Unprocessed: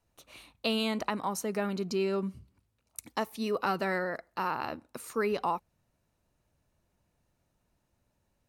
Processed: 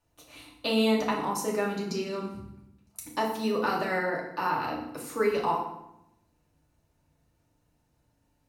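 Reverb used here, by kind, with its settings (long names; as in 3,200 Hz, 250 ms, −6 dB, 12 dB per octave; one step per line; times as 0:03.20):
feedback delay network reverb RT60 0.81 s, low-frequency decay 1.5×, high-frequency decay 0.8×, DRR −2.5 dB
level −1 dB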